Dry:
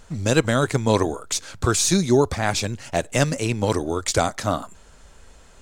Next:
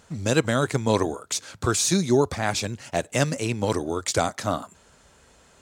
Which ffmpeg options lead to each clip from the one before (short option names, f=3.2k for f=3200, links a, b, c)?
-af "highpass=85,volume=-2.5dB"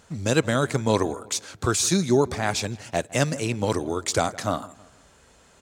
-filter_complex "[0:a]asplit=2[a][b];[b]adelay=161,lowpass=f=2.3k:p=1,volume=-20dB,asplit=2[c][d];[d]adelay=161,lowpass=f=2.3k:p=1,volume=0.45,asplit=2[e][f];[f]adelay=161,lowpass=f=2.3k:p=1,volume=0.45[g];[a][c][e][g]amix=inputs=4:normalize=0"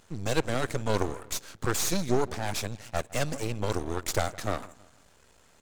-af "aeval=exprs='max(val(0),0)':c=same,volume=-1dB"